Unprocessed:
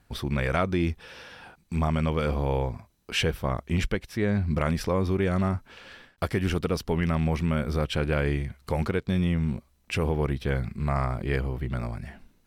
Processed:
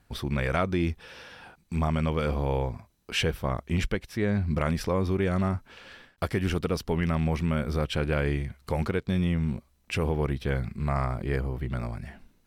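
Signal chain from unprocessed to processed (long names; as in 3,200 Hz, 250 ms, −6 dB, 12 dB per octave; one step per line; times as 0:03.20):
0:11.11–0:11.61: dynamic equaliser 2,900 Hz, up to −6 dB, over −48 dBFS, Q 1.3
level −1 dB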